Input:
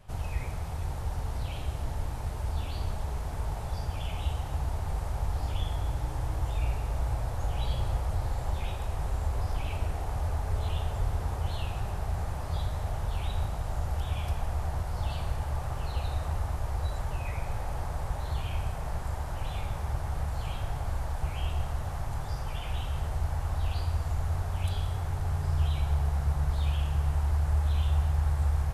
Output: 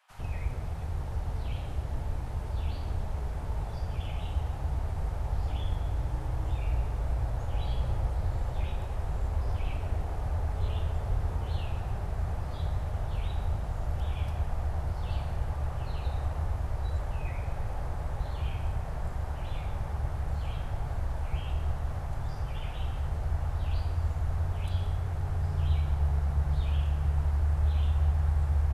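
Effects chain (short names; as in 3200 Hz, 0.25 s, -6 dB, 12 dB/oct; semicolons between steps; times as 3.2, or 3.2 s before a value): high shelf 3500 Hz -9.5 dB; bands offset in time highs, lows 0.1 s, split 920 Hz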